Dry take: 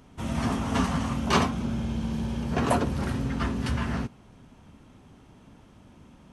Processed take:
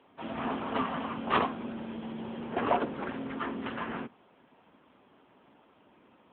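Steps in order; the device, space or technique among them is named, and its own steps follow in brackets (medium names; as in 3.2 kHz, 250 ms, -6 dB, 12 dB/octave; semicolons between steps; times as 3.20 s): dynamic bell 260 Hz, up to +3 dB, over -35 dBFS, Q 0.85; 1.48–2.26 s: high-pass 120 Hz 12 dB/octave; telephone (band-pass 400–3300 Hz; AMR-NB 7.95 kbps 8 kHz)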